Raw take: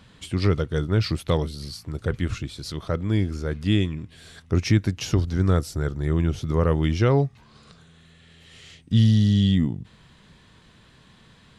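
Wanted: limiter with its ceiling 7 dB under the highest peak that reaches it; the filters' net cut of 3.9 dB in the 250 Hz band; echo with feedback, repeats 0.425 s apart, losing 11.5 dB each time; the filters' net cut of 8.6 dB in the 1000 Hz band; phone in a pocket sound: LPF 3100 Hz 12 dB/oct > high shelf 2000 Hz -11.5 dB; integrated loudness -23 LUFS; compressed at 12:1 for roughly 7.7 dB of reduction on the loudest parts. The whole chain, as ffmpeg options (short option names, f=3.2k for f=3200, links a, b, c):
-af "equalizer=f=250:t=o:g=-5,equalizer=f=1k:t=o:g=-8,acompressor=threshold=-23dB:ratio=12,alimiter=limit=-21dB:level=0:latency=1,lowpass=3.1k,highshelf=f=2k:g=-11.5,aecho=1:1:425|850|1275:0.266|0.0718|0.0194,volume=10dB"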